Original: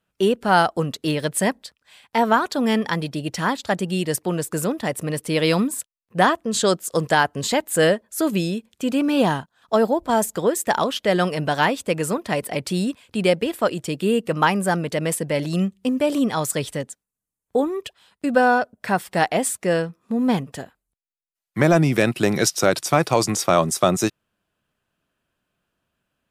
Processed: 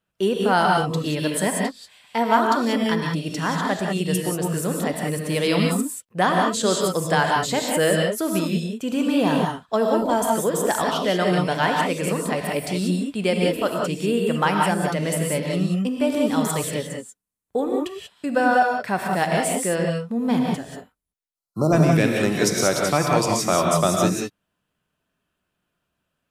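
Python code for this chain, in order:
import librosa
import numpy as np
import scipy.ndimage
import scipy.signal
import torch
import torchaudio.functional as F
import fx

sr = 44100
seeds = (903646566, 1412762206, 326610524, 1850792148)

y = fx.dmg_crackle(x, sr, seeds[0], per_s=26.0, level_db=-32.0, at=(6.55, 7.18), fade=0.02)
y = fx.spec_erase(y, sr, start_s=21.29, length_s=0.44, low_hz=1400.0, high_hz=3900.0)
y = fx.rev_gated(y, sr, seeds[1], gate_ms=210, shape='rising', drr_db=0.0)
y = y * 10.0 ** (-3.5 / 20.0)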